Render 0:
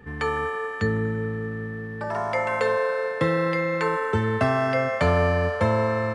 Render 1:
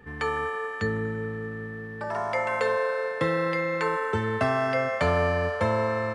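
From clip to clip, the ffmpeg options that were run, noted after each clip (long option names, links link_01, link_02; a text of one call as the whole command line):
ffmpeg -i in.wav -af "equalizer=frequency=120:width=0.43:gain=-4,volume=-1.5dB" out.wav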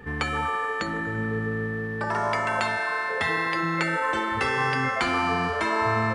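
ffmpeg -i in.wav -af "afftfilt=real='re*lt(hypot(re,im),0.178)':imag='im*lt(hypot(re,im),0.178)':win_size=1024:overlap=0.75,volume=7dB" out.wav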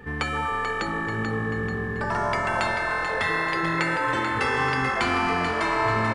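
ffmpeg -i in.wav -filter_complex "[0:a]asplit=8[link_01][link_02][link_03][link_04][link_05][link_06][link_07][link_08];[link_02]adelay=437,afreqshift=-43,volume=-7.5dB[link_09];[link_03]adelay=874,afreqshift=-86,volume=-12.7dB[link_10];[link_04]adelay=1311,afreqshift=-129,volume=-17.9dB[link_11];[link_05]adelay=1748,afreqshift=-172,volume=-23.1dB[link_12];[link_06]adelay=2185,afreqshift=-215,volume=-28.3dB[link_13];[link_07]adelay=2622,afreqshift=-258,volume=-33.5dB[link_14];[link_08]adelay=3059,afreqshift=-301,volume=-38.7dB[link_15];[link_01][link_09][link_10][link_11][link_12][link_13][link_14][link_15]amix=inputs=8:normalize=0" out.wav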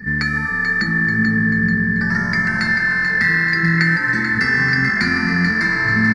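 ffmpeg -i in.wav -af "firequalizer=gain_entry='entry(100,0);entry(190,15);entry(280,1);entry(550,-16);entry(1100,-11);entry(1800,12);entry(3100,-25);entry(4500,10);entry(7600,-7);entry(13000,-1)':delay=0.05:min_phase=1,volume=3.5dB" out.wav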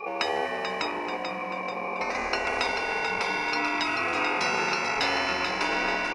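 ffmpeg -i in.wav -af "afftfilt=real='re*lt(hypot(re,im),0.501)':imag='im*lt(hypot(re,im),0.501)':win_size=1024:overlap=0.75,aeval=exprs='val(0)*sin(2*PI*630*n/s)':channel_layout=same" out.wav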